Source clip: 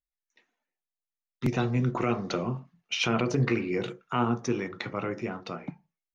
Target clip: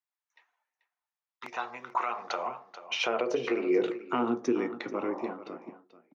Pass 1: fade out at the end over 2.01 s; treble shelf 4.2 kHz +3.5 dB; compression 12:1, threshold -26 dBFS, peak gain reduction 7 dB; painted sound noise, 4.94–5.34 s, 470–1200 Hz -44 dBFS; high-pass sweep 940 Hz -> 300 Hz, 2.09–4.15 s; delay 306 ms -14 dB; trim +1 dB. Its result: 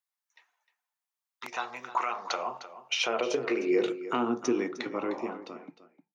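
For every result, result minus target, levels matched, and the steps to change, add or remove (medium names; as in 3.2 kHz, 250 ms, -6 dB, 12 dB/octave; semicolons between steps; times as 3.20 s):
8 kHz band +6.5 dB; echo 130 ms early
change: treble shelf 4.2 kHz -8.5 dB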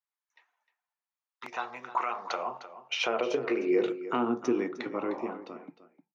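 echo 130 ms early
change: delay 436 ms -14 dB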